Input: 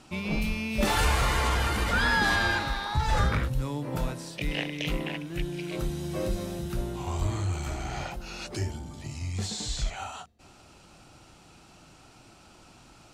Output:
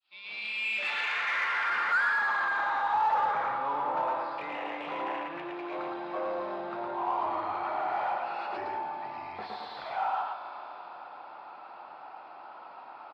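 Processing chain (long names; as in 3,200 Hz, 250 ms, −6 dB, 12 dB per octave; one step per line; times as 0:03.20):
fade in at the beginning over 0.94 s
high-pass filter 140 Hz 6 dB per octave
notch filter 3,000 Hz, Q 19
single-tap delay 112 ms −3.5 dB
brickwall limiter −21 dBFS, peak gain reduction 8.5 dB
on a send at −8.5 dB: convolution reverb RT60 4.5 s, pre-delay 8 ms
on the sum: downsampling to 11,025 Hz
mid-hump overdrive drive 20 dB, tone 2,000 Hz, clips at −16.5 dBFS
band-pass filter sweep 3,600 Hz → 900 Hz, 0:00.23–0:02.90
in parallel at −9.5 dB: soft clipping −31.5 dBFS, distortion −10 dB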